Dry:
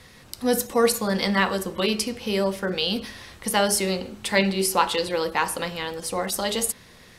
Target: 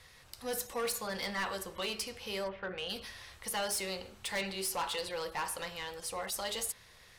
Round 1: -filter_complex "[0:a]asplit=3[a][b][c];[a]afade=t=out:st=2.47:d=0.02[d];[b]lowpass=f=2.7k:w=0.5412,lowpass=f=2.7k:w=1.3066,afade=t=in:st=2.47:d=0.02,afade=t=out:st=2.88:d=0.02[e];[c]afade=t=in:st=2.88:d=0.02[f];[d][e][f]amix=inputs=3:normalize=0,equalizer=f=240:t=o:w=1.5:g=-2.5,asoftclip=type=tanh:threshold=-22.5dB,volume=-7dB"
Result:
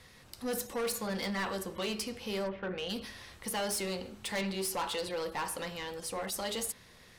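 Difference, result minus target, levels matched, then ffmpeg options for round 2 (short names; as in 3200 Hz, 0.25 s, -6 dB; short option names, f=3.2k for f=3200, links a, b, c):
250 Hz band +6.5 dB
-filter_complex "[0:a]asplit=3[a][b][c];[a]afade=t=out:st=2.47:d=0.02[d];[b]lowpass=f=2.7k:w=0.5412,lowpass=f=2.7k:w=1.3066,afade=t=in:st=2.47:d=0.02,afade=t=out:st=2.88:d=0.02[e];[c]afade=t=in:st=2.88:d=0.02[f];[d][e][f]amix=inputs=3:normalize=0,equalizer=f=240:t=o:w=1.5:g=-13.5,asoftclip=type=tanh:threshold=-22.5dB,volume=-7dB"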